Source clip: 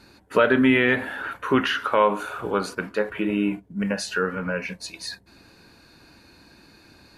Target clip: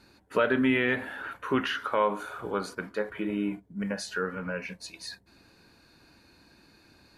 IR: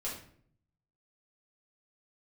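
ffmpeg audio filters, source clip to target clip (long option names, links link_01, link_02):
-filter_complex "[0:a]asettb=1/sr,asplit=3[link_01][link_02][link_03];[link_01]atrim=end=1.764[link_04];[link_02]atrim=start=1.76:end=4.33,asetpts=PTS-STARTPTS,afade=type=in:duration=0.004:curve=qsin,afade=type=out:start_time=2.566:duration=0.004:curve=qsin,bandreject=frequency=2700:width=8.3[link_05];[link_03]atrim=start=4.326[link_06];[link_04][link_05]acrossfade=duration=0.004:curve1=hsin:curve2=qsin[link_07];[link_07][link_06]acrossfade=duration=0.004:curve1=qsin:curve2=hsin,volume=-6.5dB"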